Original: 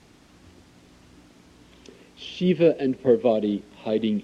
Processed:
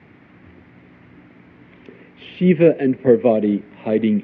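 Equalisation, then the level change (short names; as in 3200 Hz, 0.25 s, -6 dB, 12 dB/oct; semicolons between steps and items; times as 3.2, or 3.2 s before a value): HPF 96 Hz 24 dB/oct; synth low-pass 2100 Hz, resonance Q 3.4; tilt -2 dB/oct; +2.5 dB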